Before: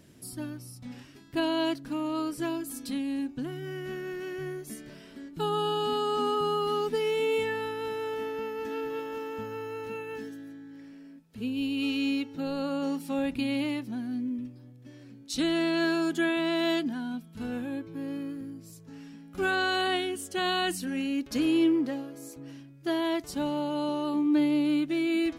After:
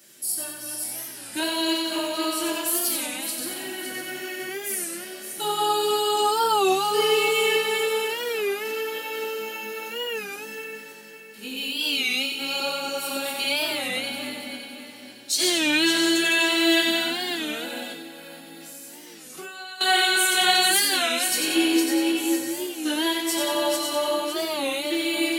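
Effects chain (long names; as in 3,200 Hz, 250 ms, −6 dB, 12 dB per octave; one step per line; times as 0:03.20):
feedback delay that plays each chunk backwards 280 ms, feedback 60%, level −3.5 dB
spectral tilt +4 dB per octave
echo with a time of its own for lows and highs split 380 Hz, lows 242 ms, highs 91 ms, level −4.5 dB
0:17.91–0:19.81: downward compressor 16 to 1, threshold −38 dBFS, peak gain reduction 21 dB
high-pass filter 230 Hz 12 dB per octave
convolution reverb RT60 0.30 s, pre-delay 3 ms, DRR −4.5 dB
wow of a warped record 33 1/3 rpm, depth 160 cents
level −2.5 dB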